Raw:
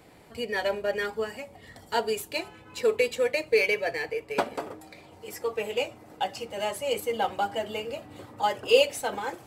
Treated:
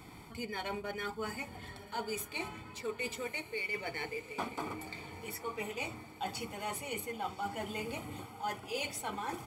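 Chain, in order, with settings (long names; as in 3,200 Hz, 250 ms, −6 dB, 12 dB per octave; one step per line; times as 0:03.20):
comb filter 0.9 ms, depth 71%
reversed playback
downward compressor 5 to 1, threshold −37 dBFS, peak gain reduction 16.5 dB
reversed playback
feedback delay with all-pass diffusion 1,115 ms, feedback 47%, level −14 dB
level +1 dB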